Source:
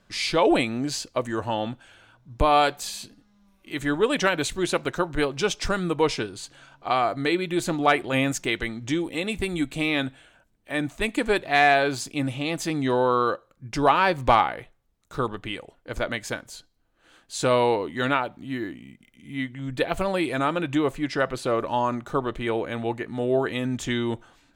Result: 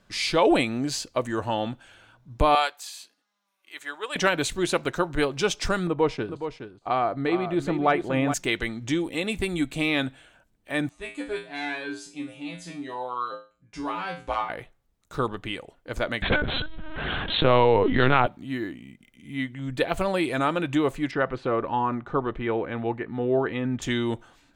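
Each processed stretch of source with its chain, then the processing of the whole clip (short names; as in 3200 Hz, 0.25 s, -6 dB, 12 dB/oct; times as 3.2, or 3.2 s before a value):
2.55–4.16 HPF 810 Hz + upward expander, over -31 dBFS
5.87–8.34 LPF 1300 Hz 6 dB/oct + gate -42 dBFS, range -17 dB + echo 0.418 s -9.5 dB
10.89–14.49 steep low-pass 11000 Hz 72 dB/oct + resonator 58 Hz, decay 0.34 s, harmonics odd, mix 100%
16.22–18.27 low shelf 350 Hz +3.5 dB + LPC vocoder at 8 kHz pitch kept + fast leveller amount 70%
21.11–23.82 LPF 2300 Hz + notch 610 Hz, Q 8.9
whole clip: dry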